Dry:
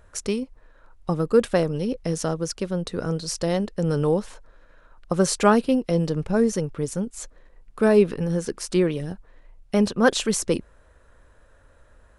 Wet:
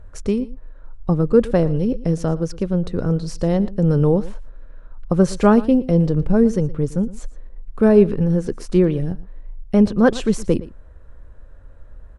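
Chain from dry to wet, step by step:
spectral tilt −3 dB per octave
single-tap delay 115 ms −18.5 dB

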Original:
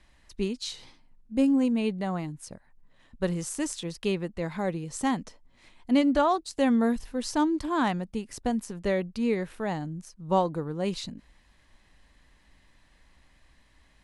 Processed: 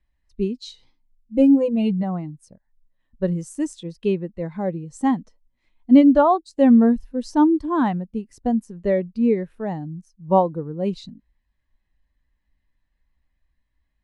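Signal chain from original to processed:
0:01.37–0:02.03: comb filter 6 ms, depth 94%
every bin expanded away from the loudest bin 1.5 to 1
level +7.5 dB

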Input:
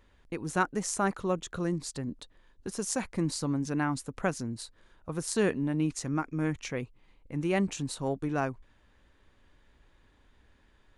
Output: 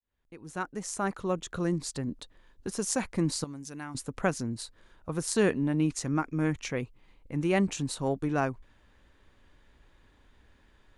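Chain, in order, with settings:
fade in at the beginning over 1.72 s
0:03.44–0:03.95: first-order pre-emphasis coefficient 0.8
level +2 dB

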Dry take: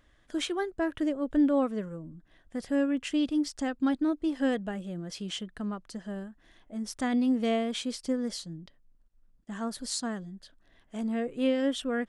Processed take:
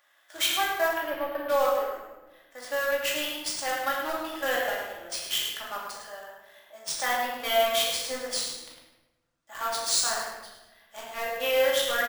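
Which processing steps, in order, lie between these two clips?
high-pass filter 630 Hz 24 dB per octave
high-shelf EQ 8,400 Hz +5 dB
in parallel at −5 dB: bit-depth reduction 6 bits, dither none
0:00.91–0:01.49: on the sum: high-frequency loss of the air 290 metres
on a send: repeating echo 105 ms, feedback 28%, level −8 dB
on the sum: rectangular room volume 530 cubic metres, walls mixed, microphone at 2.4 metres
bad sample-rate conversion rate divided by 3×, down none, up hold

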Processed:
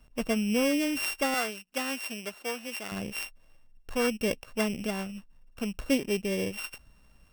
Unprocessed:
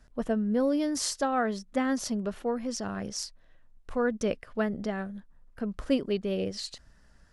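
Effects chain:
samples sorted by size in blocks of 16 samples
0:01.34–0:02.92: high-pass filter 740 Hz 6 dB per octave

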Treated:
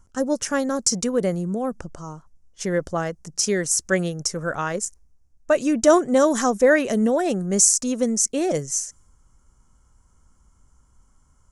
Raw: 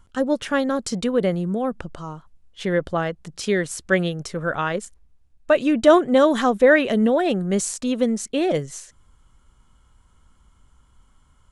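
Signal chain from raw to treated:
high shelf with overshoot 4,600 Hz +9 dB, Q 3
one half of a high-frequency compander decoder only
level −1.5 dB

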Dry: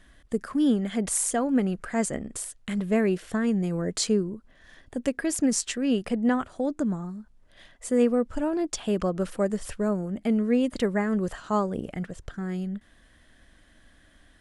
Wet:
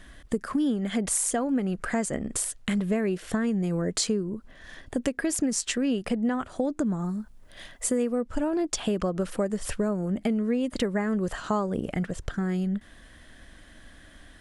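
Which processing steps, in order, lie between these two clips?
0:06.99–0:08.21: high-shelf EQ 9,600 Hz +9.5 dB
downward compressor 5 to 1, threshold −31 dBFS, peak gain reduction 13.5 dB
level +7 dB

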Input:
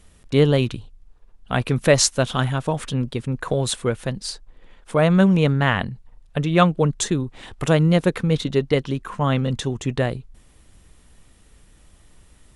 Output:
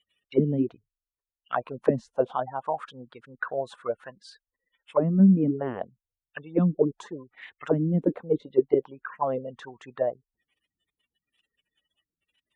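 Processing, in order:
gate on every frequency bin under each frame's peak −25 dB strong
envelope filter 220–3,000 Hz, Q 5.7, down, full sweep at −12 dBFS
level +5 dB

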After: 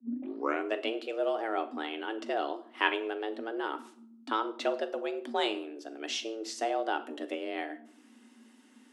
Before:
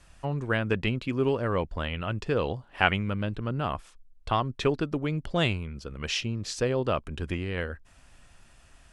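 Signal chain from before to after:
turntable start at the beginning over 0.75 s
frequency shifter +220 Hz
on a send: Bessel high-pass filter 400 Hz, order 2 + convolution reverb RT60 0.65 s, pre-delay 5 ms, DRR 7.5 dB
on the sum: level −5.5 dB

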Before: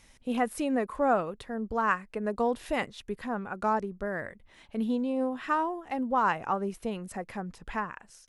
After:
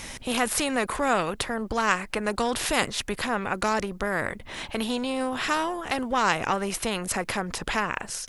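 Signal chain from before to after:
every bin compressed towards the loudest bin 2 to 1
level +6 dB

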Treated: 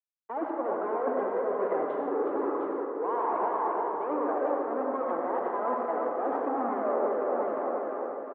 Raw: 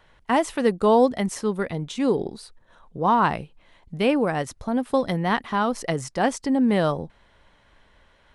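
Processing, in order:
fuzz pedal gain 36 dB, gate −39 dBFS
low-pass filter 1,200 Hz 24 dB per octave
repeating echo 352 ms, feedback 58%, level −8.5 dB
flanger 1.2 Hz, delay 0.7 ms, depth 1.9 ms, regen +52%
Butterworth high-pass 310 Hz 36 dB per octave
reversed playback
downward compressor 8 to 1, threshold −33 dBFS, peak gain reduction 17.5 dB
reversed playback
convolution reverb RT60 1.6 s, pre-delay 62 ms, DRR 0 dB
multiband upward and downward expander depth 40%
level +3.5 dB

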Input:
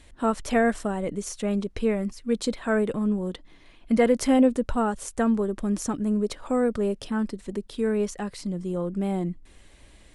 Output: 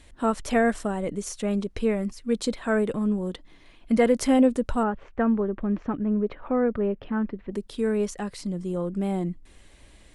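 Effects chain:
0:04.83–0:07.52: low-pass filter 2,500 Hz 24 dB per octave

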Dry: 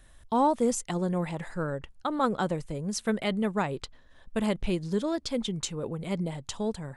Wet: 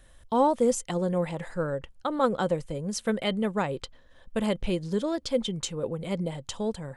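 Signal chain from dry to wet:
hollow resonant body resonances 520/3,100 Hz, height 8 dB

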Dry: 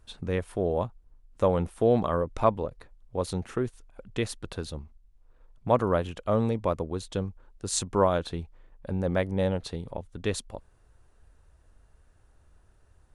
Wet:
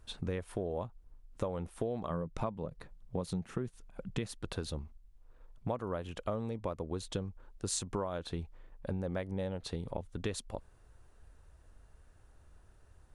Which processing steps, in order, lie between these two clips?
0:02.10–0:04.34: parametric band 170 Hz +10.5 dB 0.72 octaves
downward compressor 12 to 1, threshold −32 dBFS, peak gain reduction 17.5 dB

